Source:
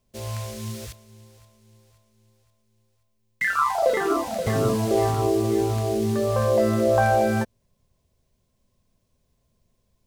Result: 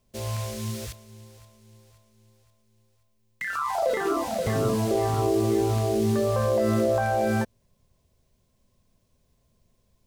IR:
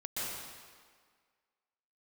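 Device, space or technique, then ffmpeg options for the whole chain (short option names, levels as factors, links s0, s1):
de-esser from a sidechain: -filter_complex "[0:a]asplit=2[s0][s1];[s1]highpass=f=5400:p=1,apad=whole_len=444012[s2];[s0][s2]sidechaincompress=threshold=0.01:ratio=5:attack=2.4:release=34,volume=1.26"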